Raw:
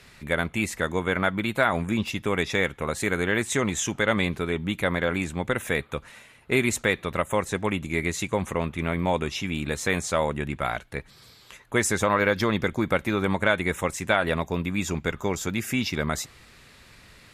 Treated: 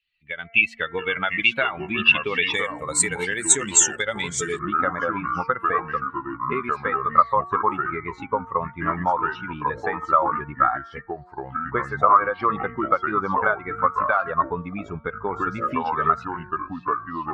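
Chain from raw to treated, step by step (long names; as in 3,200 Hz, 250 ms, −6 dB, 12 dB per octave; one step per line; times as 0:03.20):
spectral dynamics exaggerated over time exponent 2
low-shelf EQ 310 Hz −11.5 dB
hum removal 228 Hz, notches 10
downward compressor 4 to 1, threshold −39 dBFS, peak gain reduction 14.5 dB
low-shelf EQ 140 Hz −6.5 dB
automatic gain control gain up to 13 dB
delay with pitch and tempo change per echo 602 ms, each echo −4 semitones, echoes 2, each echo −6 dB
low-pass with resonance 2,800 Hz, resonance Q 5.9, from 0:02.54 8,000 Hz, from 0:04.59 1,200 Hz
level +1.5 dB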